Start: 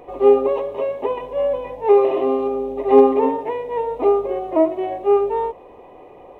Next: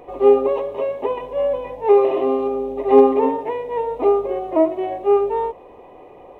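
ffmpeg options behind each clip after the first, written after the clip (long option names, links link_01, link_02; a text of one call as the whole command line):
ffmpeg -i in.wav -af anull out.wav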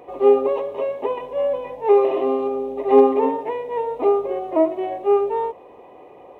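ffmpeg -i in.wav -af "highpass=frequency=140:poles=1,volume=-1dB" out.wav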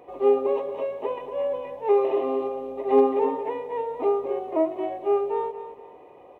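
ffmpeg -i in.wav -af "aecho=1:1:233|466|699:0.282|0.0874|0.0271,volume=-5.5dB" out.wav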